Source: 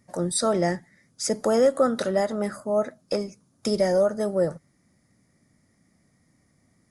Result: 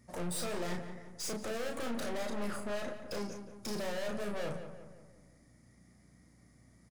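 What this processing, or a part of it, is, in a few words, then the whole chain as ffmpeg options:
valve amplifier with mains hum: -filter_complex "[0:a]aeval=exprs='(tanh(79.4*val(0)+0.4)-tanh(0.4))/79.4':c=same,aeval=exprs='val(0)+0.000398*(sin(2*PI*60*n/s)+sin(2*PI*2*60*n/s)/2+sin(2*PI*3*60*n/s)/3+sin(2*PI*4*60*n/s)/4+sin(2*PI*5*60*n/s)/5)':c=same,asplit=2[a][b];[b]adelay=34,volume=-5dB[c];[a][c]amix=inputs=2:normalize=0,asplit=2[d][e];[e]adelay=176,lowpass=f=2.3k:p=1,volume=-9dB,asplit=2[f][g];[g]adelay=176,lowpass=f=2.3k:p=1,volume=0.5,asplit=2[h][i];[i]adelay=176,lowpass=f=2.3k:p=1,volume=0.5,asplit=2[j][k];[k]adelay=176,lowpass=f=2.3k:p=1,volume=0.5,asplit=2[l][m];[m]adelay=176,lowpass=f=2.3k:p=1,volume=0.5,asplit=2[n][o];[o]adelay=176,lowpass=f=2.3k:p=1,volume=0.5[p];[d][f][h][j][l][n][p]amix=inputs=7:normalize=0"

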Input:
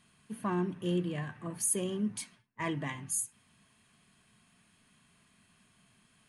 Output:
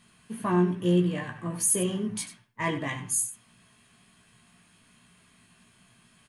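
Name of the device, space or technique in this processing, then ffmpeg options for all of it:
slapback doubling: -filter_complex "[0:a]asplit=3[a][b][c];[b]adelay=17,volume=-3.5dB[d];[c]adelay=95,volume=-11dB[e];[a][d][e]amix=inputs=3:normalize=0,volume=4.5dB"

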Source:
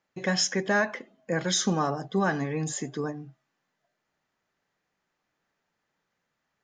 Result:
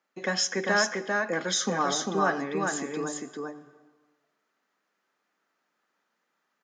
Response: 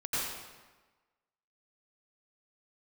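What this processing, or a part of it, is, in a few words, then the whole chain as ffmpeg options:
ducked reverb: -filter_complex "[0:a]asplit=3[a][b][c];[1:a]atrim=start_sample=2205[d];[b][d]afir=irnorm=-1:irlink=0[e];[c]apad=whole_len=292818[f];[e][f]sidechaincompress=threshold=-32dB:ratio=3:attack=16:release=604,volume=-18.5dB[g];[a][g]amix=inputs=2:normalize=0,highpass=f=210:w=0.5412,highpass=f=210:w=1.3066,equalizer=f=1.3k:t=o:w=0.41:g=5.5,aecho=1:1:397:0.708,volume=-1.5dB"

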